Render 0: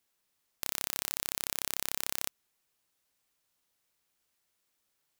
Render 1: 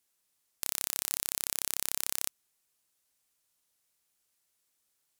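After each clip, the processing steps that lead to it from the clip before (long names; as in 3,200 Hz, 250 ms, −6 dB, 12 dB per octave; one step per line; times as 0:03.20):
parametric band 9,700 Hz +7.5 dB 1.7 octaves
level −3 dB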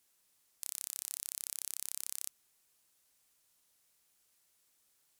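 hard clipping −20 dBFS, distortion −3 dB
level +4 dB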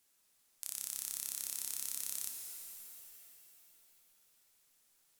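reverb with rising layers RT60 3 s, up +7 semitones, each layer −2 dB, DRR 3.5 dB
level −1 dB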